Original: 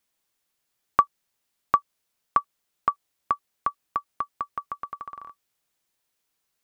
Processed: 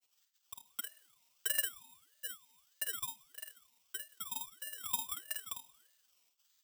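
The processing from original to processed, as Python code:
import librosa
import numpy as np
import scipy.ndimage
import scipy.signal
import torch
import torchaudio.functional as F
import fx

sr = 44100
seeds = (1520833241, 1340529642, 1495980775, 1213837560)

p1 = fx.lower_of_two(x, sr, delay_ms=0.5)
p2 = fx.highpass(p1, sr, hz=1300.0, slope=6)
p3 = np.diff(p2, prepend=0.0)
p4 = p3 + 0.93 * np.pad(p3, (int(4.3 * sr / 1000.0), 0))[:len(p3)]
p5 = fx.auto_swell(p4, sr, attack_ms=120.0)
p6 = fx.quant_dither(p5, sr, seeds[0], bits=6, dither='none')
p7 = p5 + F.gain(torch.from_numpy(p6), -6.5).numpy()
p8 = fx.granulator(p7, sr, seeds[1], grain_ms=90.0, per_s=22.0, spray_ms=738.0, spread_st=0)
p9 = p8 + fx.room_early_taps(p8, sr, ms=(50, 79), db=(-5.5, -13.5), dry=0)
p10 = fx.room_shoebox(p9, sr, seeds[2], volume_m3=1300.0, walls='mixed', distance_m=0.36)
p11 = (np.kron(scipy.signal.resample_poly(p10, 1, 4), np.eye(4)[0]) * 4)[:len(p10)]
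p12 = fx.ring_lfo(p11, sr, carrier_hz=970.0, swing_pct=45, hz=1.6)
y = F.gain(torch.from_numpy(p12), 15.0).numpy()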